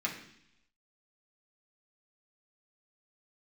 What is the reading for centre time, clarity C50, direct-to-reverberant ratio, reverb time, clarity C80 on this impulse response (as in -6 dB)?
24 ms, 7.5 dB, -3.5 dB, 0.70 s, 10.5 dB